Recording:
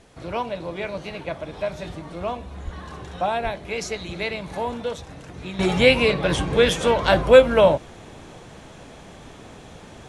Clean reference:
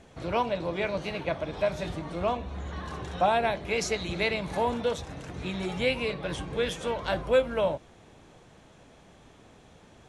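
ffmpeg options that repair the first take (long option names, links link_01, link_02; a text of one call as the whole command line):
ffmpeg -i in.wav -filter_complex "[0:a]asplit=3[link_01][link_02][link_03];[link_01]afade=type=out:start_time=2.64:duration=0.02[link_04];[link_02]highpass=frequency=140:width=0.5412,highpass=frequency=140:width=1.3066,afade=type=in:start_time=2.64:duration=0.02,afade=type=out:start_time=2.76:duration=0.02[link_05];[link_03]afade=type=in:start_time=2.76:duration=0.02[link_06];[link_04][link_05][link_06]amix=inputs=3:normalize=0,asplit=3[link_07][link_08][link_09];[link_07]afade=type=out:start_time=3.43:duration=0.02[link_10];[link_08]highpass=frequency=140:width=0.5412,highpass=frequency=140:width=1.3066,afade=type=in:start_time=3.43:duration=0.02,afade=type=out:start_time=3.55:duration=0.02[link_11];[link_09]afade=type=in:start_time=3.55:duration=0.02[link_12];[link_10][link_11][link_12]amix=inputs=3:normalize=0,agate=range=-21dB:threshold=-35dB,asetnsamples=nb_out_samples=441:pad=0,asendcmd='5.59 volume volume -11.5dB',volume=0dB" out.wav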